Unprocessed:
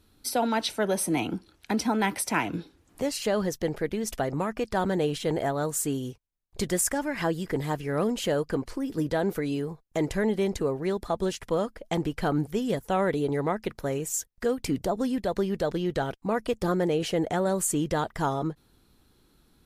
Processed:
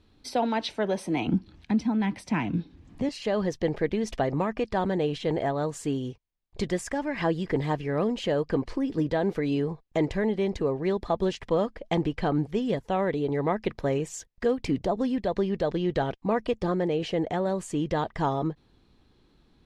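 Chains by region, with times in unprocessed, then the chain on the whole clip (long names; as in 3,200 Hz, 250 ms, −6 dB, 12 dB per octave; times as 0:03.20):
0:01.27–0:03.09: upward compression, threshold −44 dBFS + low shelf with overshoot 300 Hz +8 dB, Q 1.5
whole clip: speech leveller 0.5 s; low-pass filter 4,100 Hz 12 dB per octave; parametric band 1,400 Hz −8 dB 0.2 octaves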